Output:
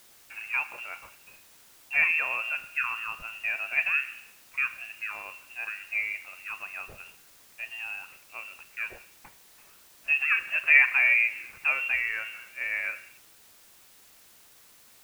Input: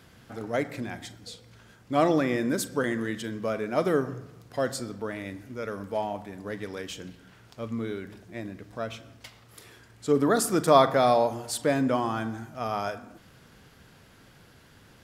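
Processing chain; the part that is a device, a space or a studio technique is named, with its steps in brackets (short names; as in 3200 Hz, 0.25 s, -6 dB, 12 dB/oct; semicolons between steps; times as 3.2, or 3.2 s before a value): expander -43 dBFS; scrambled radio voice (BPF 380–2800 Hz; inverted band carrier 3000 Hz; white noise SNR 25 dB)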